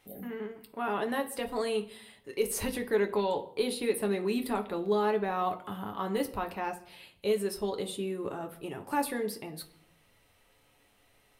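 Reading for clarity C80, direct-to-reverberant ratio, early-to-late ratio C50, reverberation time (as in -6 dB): 18.0 dB, 4.0 dB, 14.5 dB, 0.65 s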